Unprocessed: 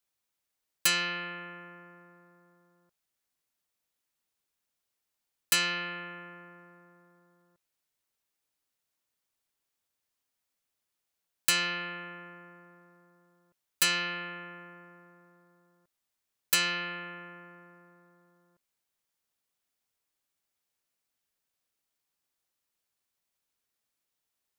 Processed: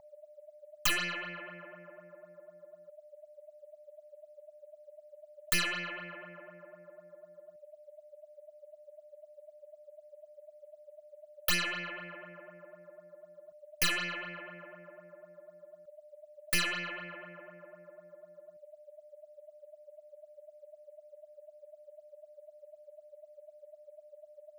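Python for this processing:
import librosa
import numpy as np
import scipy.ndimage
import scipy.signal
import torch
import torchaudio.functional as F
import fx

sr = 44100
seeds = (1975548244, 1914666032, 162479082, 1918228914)

y = fx.tracing_dist(x, sr, depth_ms=0.2)
y = y + 10.0 ** (-46.0 / 20.0) * np.sin(2.0 * np.pi * 600.0 * np.arange(len(y)) / sr)
y = fx.phaser_stages(y, sr, stages=8, low_hz=140.0, high_hz=1200.0, hz=4.0, feedback_pct=35)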